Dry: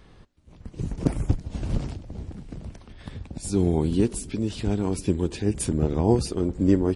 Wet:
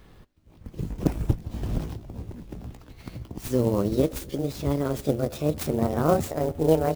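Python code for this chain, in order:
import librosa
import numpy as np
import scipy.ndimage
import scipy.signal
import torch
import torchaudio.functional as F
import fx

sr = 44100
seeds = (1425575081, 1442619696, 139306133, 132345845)

y = fx.pitch_glide(x, sr, semitones=8.5, runs='starting unshifted')
y = fx.clock_jitter(y, sr, seeds[0], jitter_ms=0.023)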